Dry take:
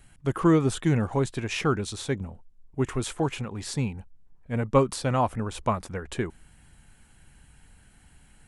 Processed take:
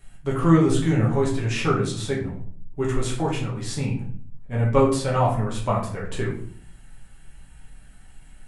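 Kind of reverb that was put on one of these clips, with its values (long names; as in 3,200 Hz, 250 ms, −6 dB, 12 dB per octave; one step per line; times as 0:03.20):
rectangular room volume 59 cubic metres, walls mixed, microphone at 1.1 metres
level −2.5 dB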